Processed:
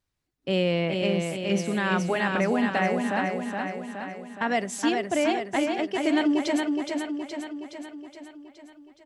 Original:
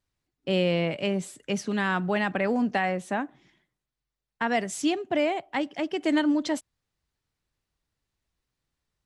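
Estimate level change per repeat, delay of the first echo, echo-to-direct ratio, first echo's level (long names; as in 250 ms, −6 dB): −4.5 dB, 419 ms, −2.0 dB, −4.0 dB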